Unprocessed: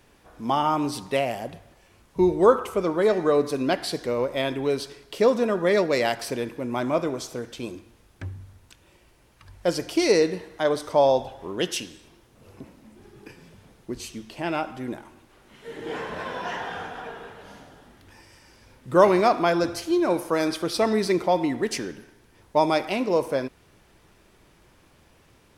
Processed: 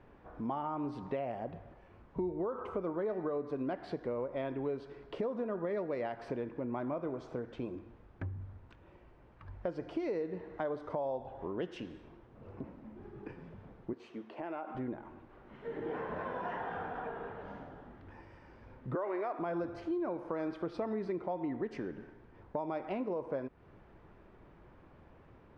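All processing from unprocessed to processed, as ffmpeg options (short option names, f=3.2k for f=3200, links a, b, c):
-filter_complex "[0:a]asettb=1/sr,asplit=3[a][b][c];[a]atrim=end=13.934[d];[b]atrim=start=13.93:end=14.75,asetpts=PTS-STARTPTS,afade=t=in:d=0.004:c=qsin,afade=t=out:st=0.816:d=0.004:c=qsin,highpass=340,highshelf=f=4.2k:g=-6,acompressor=threshold=-35dB:ratio=2.5:attack=3.2:release=140:knee=1:detection=peak[e];[c]atrim=start=14.746[f];[d][e]acrossfade=d=0.004:c1=hsin:c2=qsin[g];[g][f]acrossfade=d=0.004:c1=qsin:c2=hsin,asettb=1/sr,asplit=3[h][i][j];[h]atrim=end=18.954[k];[i]atrim=start=18.95:end=19.39,asetpts=PTS-STARTPTS,afade=t=in:d=0.004:c=qsin,afade=t=out:st=0.436:d=0.004:c=qsin,highpass=f=310:w=0.5412,highpass=f=310:w=1.3066,equalizer=f=1.9k:t=o:w=0.58:g=6.5[l];[j]atrim=start=19.386[m];[k][l]acrossfade=d=0.004:c1=hsin:c2=qsin[n];[n][m]acrossfade=d=0.004:c1=qsin:c2=hsin,lowpass=1.4k,alimiter=limit=-15.5dB:level=0:latency=1:release=143,acompressor=threshold=-37dB:ratio=3"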